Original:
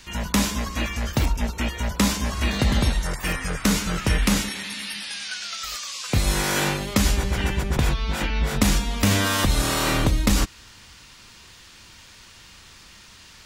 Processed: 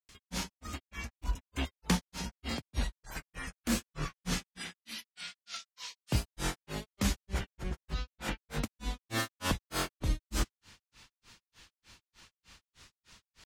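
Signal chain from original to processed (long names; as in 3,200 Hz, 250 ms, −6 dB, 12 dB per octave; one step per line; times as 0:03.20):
granular cloud 198 ms, grains 3.3 per second, pitch spread up and down by 3 semitones
level −7.5 dB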